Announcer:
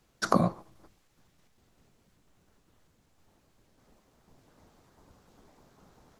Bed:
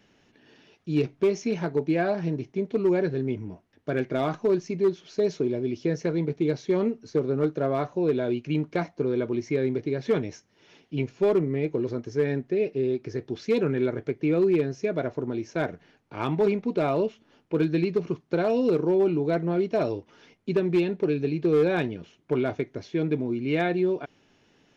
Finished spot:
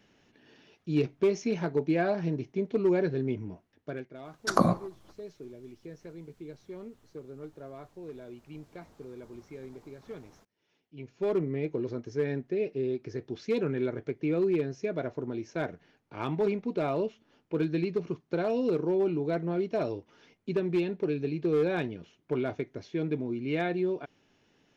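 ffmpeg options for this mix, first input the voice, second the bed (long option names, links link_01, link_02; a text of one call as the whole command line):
ffmpeg -i stem1.wav -i stem2.wav -filter_complex "[0:a]adelay=4250,volume=1dB[link_01];[1:a]volume=11.5dB,afade=type=out:start_time=3.62:duration=0.46:silence=0.149624,afade=type=in:start_time=10.96:duration=0.42:silence=0.199526[link_02];[link_01][link_02]amix=inputs=2:normalize=0" out.wav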